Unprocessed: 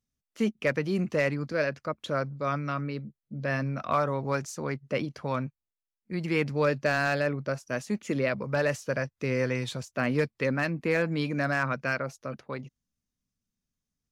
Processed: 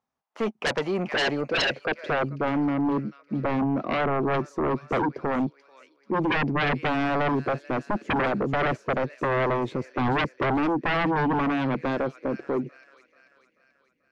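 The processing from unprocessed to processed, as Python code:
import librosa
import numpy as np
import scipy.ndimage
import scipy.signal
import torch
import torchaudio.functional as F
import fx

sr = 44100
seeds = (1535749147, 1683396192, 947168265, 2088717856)

y = fx.filter_sweep_bandpass(x, sr, from_hz=870.0, to_hz=340.0, start_s=0.94, end_s=2.33, q=3.1)
y = fx.echo_wet_highpass(y, sr, ms=437, feedback_pct=51, hz=3200.0, wet_db=-4)
y = fx.fold_sine(y, sr, drive_db=17, ceiling_db=-20.5)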